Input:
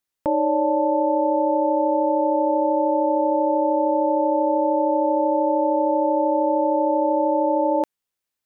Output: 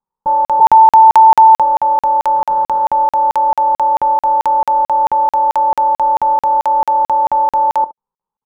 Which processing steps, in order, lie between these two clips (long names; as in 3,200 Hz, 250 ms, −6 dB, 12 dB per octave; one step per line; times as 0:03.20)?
0:00.59–0:01.60: three sine waves on the formant tracks
low-shelf EQ 270 Hz +10.5 dB
notch filter 630 Hz, Q 12
in parallel at 0 dB: brickwall limiter −19.5 dBFS, peak gain reduction 11 dB
0:02.35–0:02.86: on the sum: log-companded quantiser 2 bits
soft clipping −12.5 dBFS, distortion −8 dB
low-pass with resonance 890 Hz, resonance Q 8.2
phaser with its sweep stopped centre 450 Hz, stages 8
on a send: ambience of single reflections 25 ms −17 dB, 69 ms −17.5 dB
on the sum: regular buffer underruns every 0.22 s, samples 2,048, zero, from 0:00.45
level −4.5 dB